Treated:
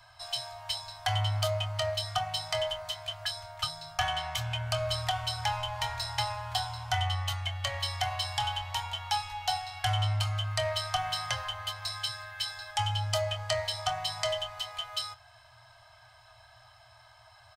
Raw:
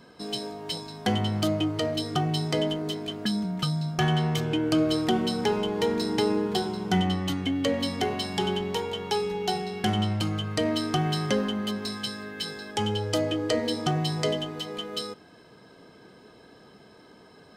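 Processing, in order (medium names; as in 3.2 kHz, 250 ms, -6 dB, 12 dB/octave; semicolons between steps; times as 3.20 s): Chebyshev band-stop 120–630 Hz, order 5; bass shelf 170 Hz +4 dB; doubling 25 ms -13 dB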